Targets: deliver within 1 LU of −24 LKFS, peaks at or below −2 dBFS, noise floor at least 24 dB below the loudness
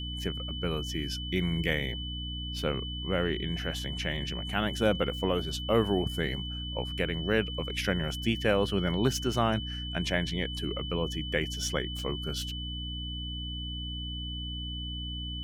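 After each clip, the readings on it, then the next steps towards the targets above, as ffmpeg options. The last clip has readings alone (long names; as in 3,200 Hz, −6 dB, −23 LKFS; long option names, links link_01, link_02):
mains hum 60 Hz; hum harmonics up to 300 Hz; level of the hum −35 dBFS; interfering tone 3,000 Hz; level of the tone −38 dBFS; integrated loudness −31.0 LKFS; sample peak −12.5 dBFS; target loudness −24.0 LKFS
→ -af "bandreject=frequency=60:width_type=h:width=4,bandreject=frequency=120:width_type=h:width=4,bandreject=frequency=180:width_type=h:width=4,bandreject=frequency=240:width_type=h:width=4,bandreject=frequency=300:width_type=h:width=4"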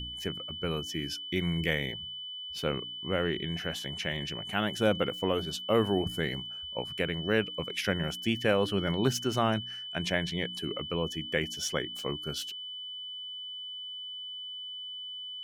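mains hum none found; interfering tone 3,000 Hz; level of the tone −38 dBFS
→ -af "bandreject=frequency=3000:width=30"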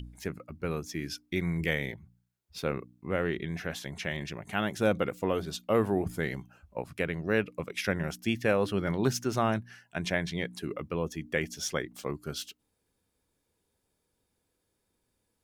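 interfering tone none found; integrated loudness −32.0 LKFS; sample peak −13.0 dBFS; target loudness −24.0 LKFS
→ -af "volume=8dB"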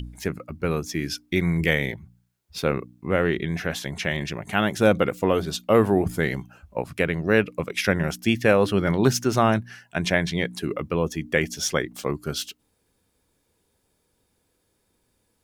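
integrated loudness −24.0 LKFS; sample peak −5.0 dBFS; background noise floor −71 dBFS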